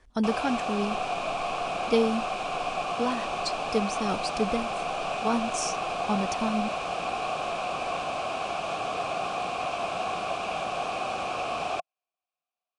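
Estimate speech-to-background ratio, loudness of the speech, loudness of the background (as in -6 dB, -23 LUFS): 0.0 dB, -30.5 LUFS, -30.5 LUFS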